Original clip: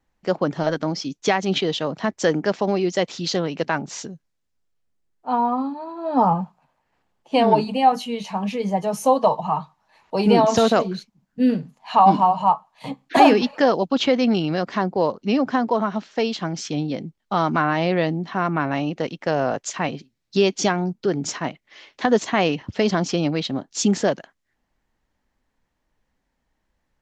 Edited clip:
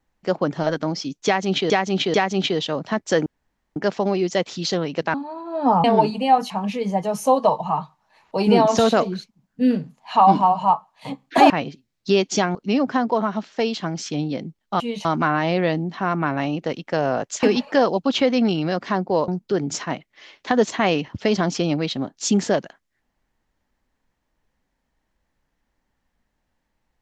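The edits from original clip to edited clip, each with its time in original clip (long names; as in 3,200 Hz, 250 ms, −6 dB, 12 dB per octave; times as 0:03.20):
0:01.26–0:01.70: repeat, 3 plays
0:02.38: splice in room tone 0.50 s
0:03.76–0:05.65: remove
0:06.35–0:07.38: remove
0:08.04–0:08.29: move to 0:17.39
0:13.29–0:15.14: swap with 0:19.77–0:20.82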